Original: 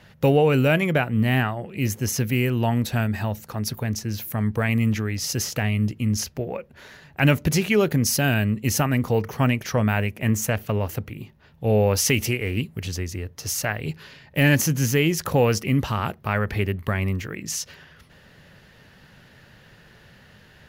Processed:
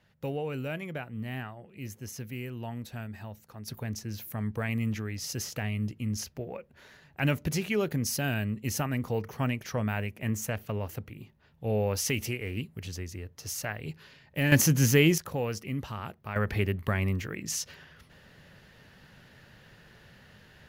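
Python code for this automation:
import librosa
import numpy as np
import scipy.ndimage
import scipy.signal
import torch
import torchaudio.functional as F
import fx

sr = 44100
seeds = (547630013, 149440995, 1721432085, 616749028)

y = fx.gain(x, sr, db=fx.steps((0.0, -16.0), (3.68, -9.0), (14.52, -1.0), (15.18, -12.5), (16.36, -4.0)))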